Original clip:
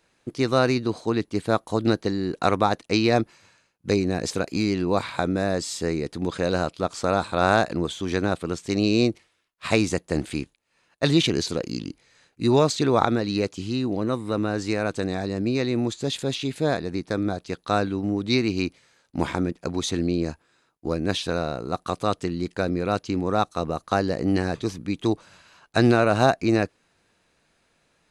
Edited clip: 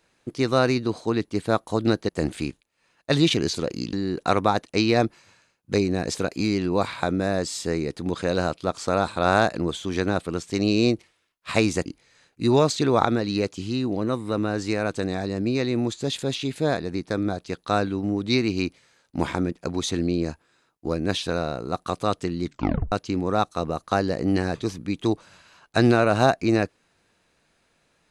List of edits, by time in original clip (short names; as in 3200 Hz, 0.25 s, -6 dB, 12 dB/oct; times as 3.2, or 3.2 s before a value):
10.02–11.86 move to 2.09
22.43 tape stop 0.49 s